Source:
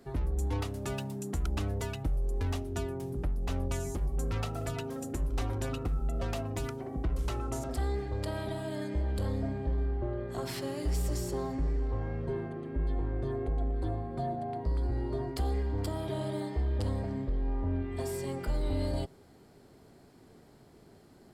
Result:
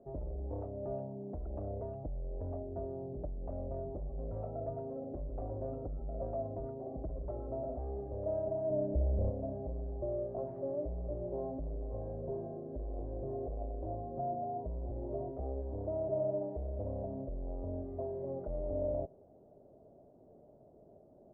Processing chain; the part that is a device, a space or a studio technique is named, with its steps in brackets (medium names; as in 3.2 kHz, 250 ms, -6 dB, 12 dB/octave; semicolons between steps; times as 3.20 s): overdriven synthesiser ladder filter (saturation -28 dBFS, distortion -16 dB; four-pole ladder low-pass 660 Hz, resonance 75%); 8.70–9.30 s: tilt EQ -2.5 dB/octave; trim +5 dB